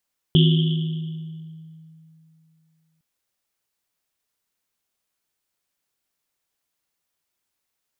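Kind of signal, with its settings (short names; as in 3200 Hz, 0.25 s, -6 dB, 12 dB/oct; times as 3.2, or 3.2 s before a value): Risset drum length 2.66 s, pitch 160 Hz, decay 2.93 s, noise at 3200 Hz, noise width 540 Hz, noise 20%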